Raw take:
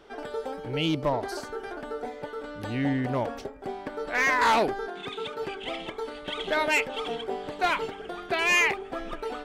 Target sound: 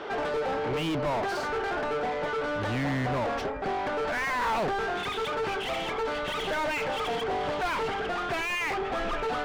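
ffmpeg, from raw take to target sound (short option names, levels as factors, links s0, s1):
-filter_complex "[0:a]asubboost=boost=6.5:cutoff=120,lowpass=6800,asplit=2[s0][s1];[s1]highpass=f=720:p=1,volume=63.1,asoftclip=type=tanh:threshold=0.211[s2];[s0][s2]amix=inputs=2:normalize=0,lowpass=f=1500:p=1,volume=0.501,volume=0.422"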